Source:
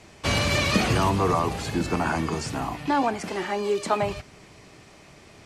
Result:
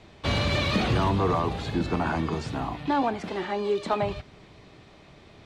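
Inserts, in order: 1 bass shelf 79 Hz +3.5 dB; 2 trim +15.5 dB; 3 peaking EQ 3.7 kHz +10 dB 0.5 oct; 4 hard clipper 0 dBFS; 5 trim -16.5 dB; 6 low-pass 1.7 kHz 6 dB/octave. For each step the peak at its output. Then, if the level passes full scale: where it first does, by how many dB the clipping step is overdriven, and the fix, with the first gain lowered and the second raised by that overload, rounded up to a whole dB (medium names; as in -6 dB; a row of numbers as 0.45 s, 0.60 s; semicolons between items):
-8.5 dBFS, +7.0 dBFS, +8.5 dBFS, 0.0 dBFS, -16.5 dBFS, -16.5 dBFS; step 2, 8.5 dB; step 2 +6.5 dB, step 5 -7.5 dB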